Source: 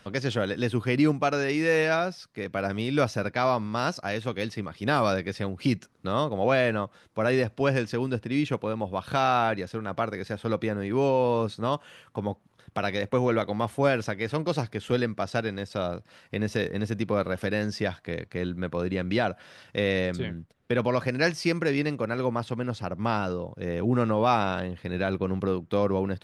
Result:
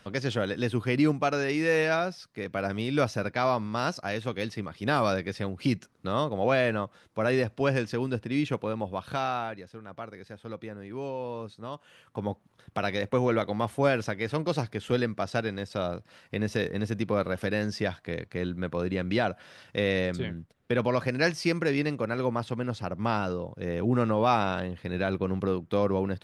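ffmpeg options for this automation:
ffmpeg -i in.wav -af "volume=9dB,afade=type=out:start_time=8.79:duration=0.77:silence=0.316228,afade=type=in:start_time=11.75:duration=0.55:silence=0.298538" out.wav

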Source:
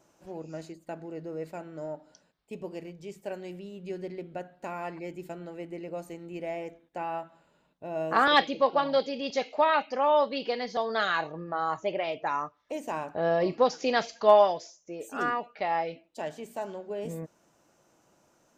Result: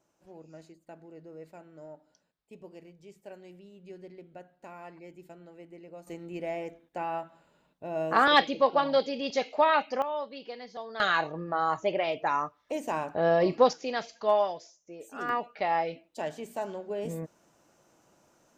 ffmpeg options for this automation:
ffmpeg -i in.wav -af "asetnsamples=nb_out_samples=441:pad=0,asendcmd='6.07 volume volume 0.5dB;10.02 volume volume -10.5dB;11 volume volume 2dB;13.73 volume volume -6dB;15.29 volume volume 1dB',volume=-9.5dB" out.wav

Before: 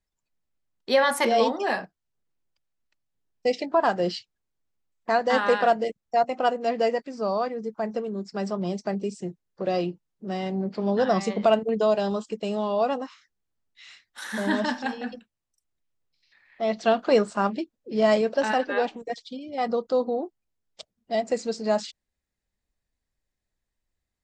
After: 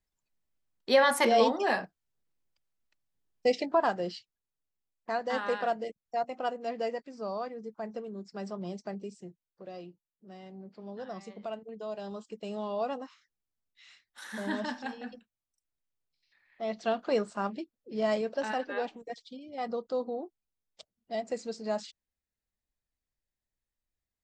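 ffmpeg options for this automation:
ffmpeg -i in.wav -af "volume=8dB,afade=type=out:start_time=3.61:duration=0.46:silence=0.421697,afade=type=out:start_time=8.8:duration=0.89:silence=0.354813,afade=type=in:start_time=11.79:duration=0.85:silence=0.316228" out.wav

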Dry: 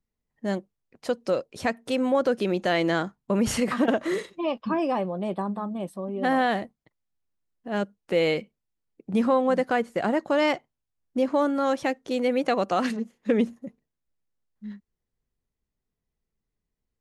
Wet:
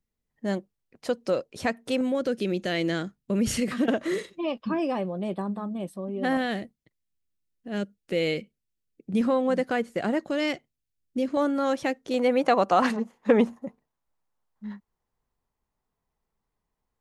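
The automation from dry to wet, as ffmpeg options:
ffmpeg -i in.wav -af "asetnsamples=nb_out_samples=441:pad=0,asendcmd='2.01 equalizer g -13;3.88 equalizer g -5.5;6.37 equalizer g -12.5;9.21 equalizer g -6;10.3 equalizer g -14;11.37 equalizer g -3;12.14 equalizer g 6;12.82 equalizer g 13.5',equalizer=frequency=930:width_type=o:width=1.2:gain=-2" out.wav

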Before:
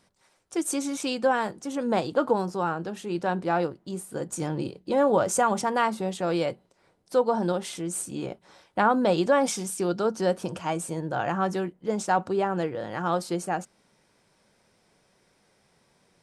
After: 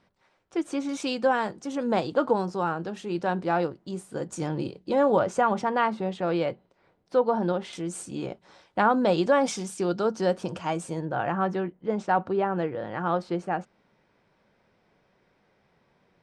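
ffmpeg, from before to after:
ffmpeg -i in.wav -af "asetnsamples=nb_out_samples=441:pad=0,asendcmd='0.89 lowpass f 6400;5.19 lowpass f 3300;7.73 lowpass f 6400;11.05 lowpass f 2800',lowpass=3200" out.wav

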